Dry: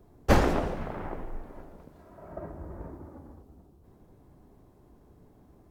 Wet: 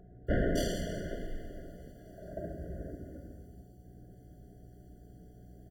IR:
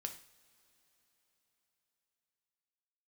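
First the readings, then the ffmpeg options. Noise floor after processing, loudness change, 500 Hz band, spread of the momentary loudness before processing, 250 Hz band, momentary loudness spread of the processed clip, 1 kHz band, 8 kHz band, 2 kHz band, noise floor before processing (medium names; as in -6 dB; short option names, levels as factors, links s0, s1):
-55 dBFS, -6.5 dB, -4.5 dB, 24 LU, -4.0 dB, 23 LU, -15.0 dB, no reading, -6.5 dB, -58 dBFS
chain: -filter_complex "[0:a]asoftclip=type=tanh:threshold=0.0668,aeval=exprs='val(0)+0.00178*(sin(2*PI*60*n/s)+sin(2*PI*2*60*n/s)/2+sin(2*PI*3*60*n/s)/3+sin(2*PI*4*60*n/s)/4+sin(2*PI*5*60*n/s)/5)':c=same,highshelf=f=3900:g=12[s0];[1:a]atrim=start_sample=2205[s1];[s0][s1]afir=irnorm=-1:irlink=0,aeval=exprs='val(0)+0.002*sin(2*PI*730*n/s)':c=same,equalizer=f=13000:t=o:w=0.96:g=-6,acrossover=split=2200[s2][s3];[s3]adelay=270[s4];[s2][s4]amix=inputs=2:normalize=0,afftfilt=real='re*eq(mod(floor(b*sr/1024/700),2),0)':imag='im*eq(mod(floor(b*sr/1024/700),2),0)':win_size=1024:overlap=0.75,volume=1.33"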